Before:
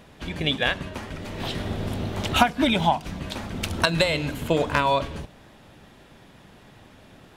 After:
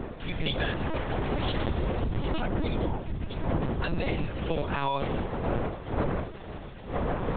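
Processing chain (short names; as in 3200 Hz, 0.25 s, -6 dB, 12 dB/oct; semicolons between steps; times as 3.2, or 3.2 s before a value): octaver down 2 oct, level -2 dB; wind noise 550 Hz -24 dBFS; 2.02–4.26 low shelf 220 Hz +9.5 dB; AGC gain up to 6 dB; limiter -11 dBFS, peak gain reduction 10 dB; compressor 12:1, threshold -22 dBFS, peak gain reduction 8 dB; LPC vocoder at 8 kHz pitch kept; gain -2 dB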